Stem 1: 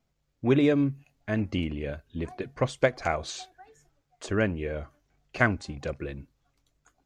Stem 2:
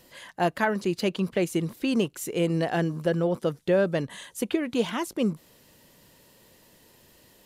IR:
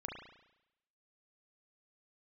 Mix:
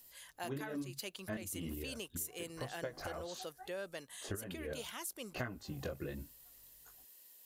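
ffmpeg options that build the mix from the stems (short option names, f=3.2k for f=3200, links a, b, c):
-filter_complex "[0:a]bandreject=f=2.3k:w=5.8,flanger=delay=16:depth=6.4:speed=1.1,volume=1.5dB[a];[1:a]highpass=f=740:p=1,aemphasis=mode=production:type=75fm,volume=-14dB,asplit=2[b][c];[c]apad=whole_len=310990[d];[a][d]sidechaincompress=threshold=-55dB:ratio=6:attack=9.6:release=139[e];[e][b]amix=inputs=2:normalize=0,acompressor=threshold=-37dB:ratio=16"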